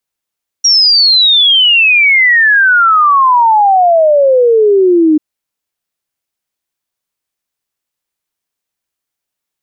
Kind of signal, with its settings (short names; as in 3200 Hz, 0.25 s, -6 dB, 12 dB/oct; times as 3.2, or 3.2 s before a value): log sweep 5700 Hz -> 300 Hz 4.54 s -4.5 dBFS